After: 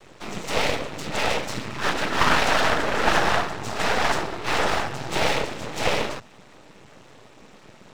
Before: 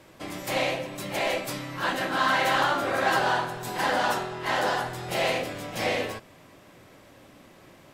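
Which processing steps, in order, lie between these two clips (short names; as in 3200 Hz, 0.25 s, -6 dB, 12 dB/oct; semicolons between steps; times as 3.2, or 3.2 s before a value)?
noise vocoder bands 12; half-wave rectifier; gain +8 dB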